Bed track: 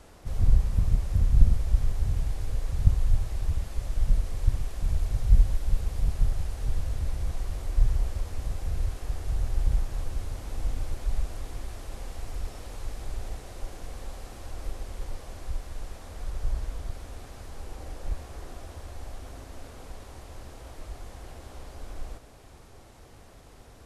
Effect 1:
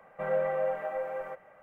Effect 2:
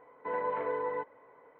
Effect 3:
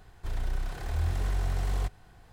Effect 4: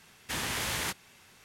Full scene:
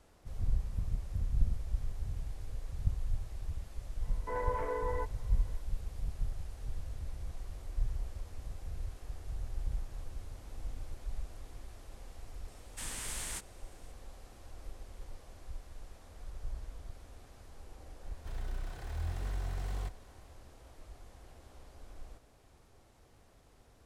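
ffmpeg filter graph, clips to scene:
-filter_complex "[0:a]volume=-11.5dB[a];[4:a]equalizer=f=8.5k:w=1.7:g=14.5[b];[2:a]atrim=end=1.59,asetpts=PTS-STARTPTS,volume=-3dB,afade=t=in:d=0.004:c=hsin,afade=t=out:st=1.586:d=0.004:c=hsin,adelay=4020[c];[b]atrim=end=1.44,asetpts=PTS-STARTPTS,volume=-13dB,afade=t=in:d=0.004:c=hsin,afade=t=out:st=1.436:d=0.004:c=hsin,adelay=12480[d];[3:a]atrim=end=2.32,asetpts=PTS-STARTPTS,volume=-8dB,afade=t=in:d=0.004:c=hsin,afade=t=out:st=2.316:d=0.004:c=hsin,adelay=18010[e];[a][c][d][e]amix=inputs=4:normalize=0"

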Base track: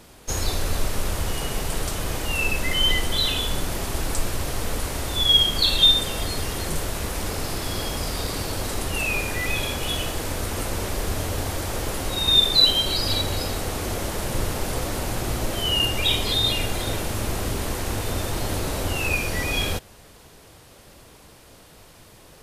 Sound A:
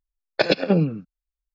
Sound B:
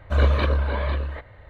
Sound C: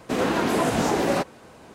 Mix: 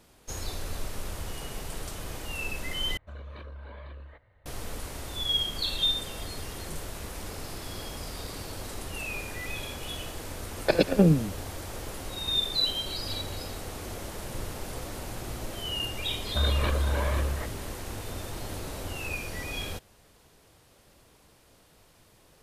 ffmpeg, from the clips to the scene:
-filter_complex "[2:a]asplit=2[a][b];[0:a]volume=-10.5dB[c];[a]acompressor=threshold=-23dB:ratio=6:attack=3.2:release=140:knee=1:detection=peak[d];[1:a]tiltshelf=f=640:g=4[e];[b]acompressor=threshold=-22dB:ratio=6:attack=3.2:release=140:knee=1:detection=peak[f];[c]asplit=2[g][h];[g]atrim=end=2.974[i];[d]atrim=end=1.49,asetpts=PTS-STARTPTS,volume=-16dB[j];[h]atrim=start=4.456[k];[e]atrim=end=1.54,asetpts=PTS-STARTPTS,volume=-3.5dB,afade=t=in:d=0.004:c=hsin,afade=t=out:st=1.536:d=0.004:c=hsin,adelay=10290[l];[f]atrim=end=1.49,asetpts=PTS-STARTPTS,volume=-0.5dB,afade=t=in:d=0.004:c=hsin,afade=t=out:st=1.486:d=0.004:c=hsin,adelay=16250[m];[i][j]acrossfade=d=0.004:c1=hsin:c2=hsin[n];[n][k]acrossfade=d=0.004:c1=hsin:c2=hsin[o];[o][l][m]amix=inputs=3:normalize=0"

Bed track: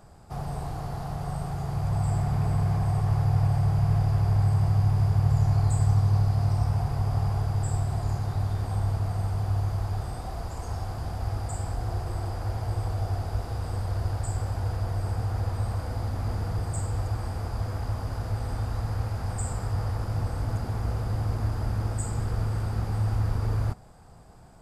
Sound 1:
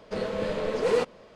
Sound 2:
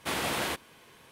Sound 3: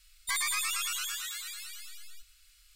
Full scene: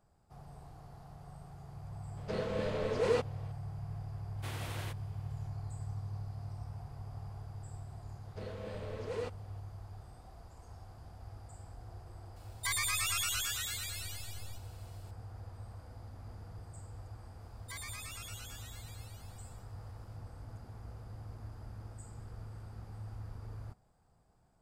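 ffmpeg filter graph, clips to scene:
-filter_complex "[1:a]asplit=2[a][b];[3:a]asplit=2[c][d];[0:a]volume=-19dB[e];[c]dynaudnorm=f=270:g=5:m=3.5dB[f];[a]atrim=end=1.35,asetpts=PTS-STARTPTS,volume=-6dB,afade=t=in:d=0.004:c=hsin,afade=t=out:st=1.346:d=0.004:c=hsin,adelay=2170[g];[2:a]atrim=end=1.11,asetpts=PTS-STARTPTS,volume=-14dB,afade=t=in:d=0.004:c=hsin,afade=t=out:st=1.106:d=0.004:c=hsin,adelay=192717S[h];[b]atrim=end=1.35,asetpts=PTS-STARTPTS,volume=-15dB,afade=t=in:d=0.004:c=hsin,afade=t=out:st=1.346:d=0.004:c=hsin,adelay=8250[i];[f]atrim=end=2.75,asetpts=PTS-STARTPTS,volume=-3.5dB,afade=t=in:d=0.004:c=hsin,afade=t=out:st=2.746:d=0.004:c=hsin,adelay=545076S[j];[d]atrim=end=2.75,asetpts=PTS-STARTPTS,volume=-14.5dB,afade=t=in:d=0.004:c=hsin,afade=t=out:st=2.746:d=0.004:c=hsin,adelay=17410[k];[e][g][h][i][j][k]amix=inputs=6:normalize=0"

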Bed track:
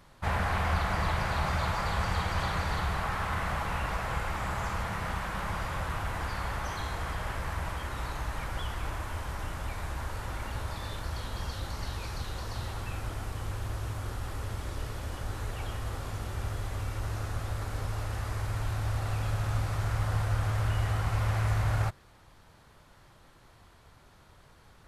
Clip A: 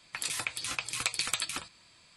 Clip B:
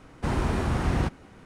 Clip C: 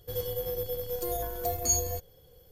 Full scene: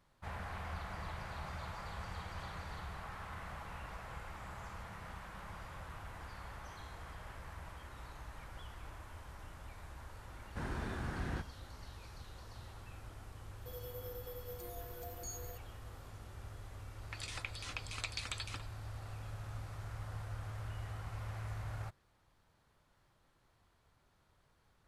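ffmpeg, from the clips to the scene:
-filter_complex "[0:a]volume=-15dB[a];[2:a]equalizer=f=1.6k:w=3.9:g=8.5[b];[3:a]alimiter=level_in=1dB:limit=-24dB:level=0:latency=1:release=71,volume=-1dB[c];[1:a]lowpass=5.9k[d];[b]atrim=end=1.45,asetpts=PTS-STARTPTS,volume=-15dB,afade=t=in:d=0.004:c=hsin,afade=t=out:st=1.446:d=0.004:c=hsin,adelay=10330[e];[c]atrim=end=2.51,asetpts=PTS-STARTPTS,volume=-12.5dB,afade=t=in:d=0.004:c=hsin,afade=t=out:st=2.506:d=0.004:c=hsin,adelay=13580[f];[d]atrim=end=2.16,asetpts=PTS-STARTPTS,volume=-9dB,afade=t=in:d=0.004:c=hsin,afade=t=out:st=2.156:d=0.004:c=hsin,adelay=16980[g];[a][e][f][g]amix=inputs=4:normalize=0"

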